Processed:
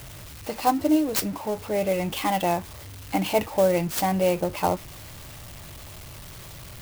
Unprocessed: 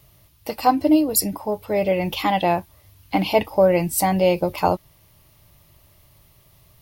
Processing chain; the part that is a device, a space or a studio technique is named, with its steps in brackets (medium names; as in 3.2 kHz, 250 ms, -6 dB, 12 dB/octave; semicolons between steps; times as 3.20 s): early CD player with a faulty converter (jump at every zero crossing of -30.5 dBFS; sampling jitter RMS 0.033 ms); trim -5 dB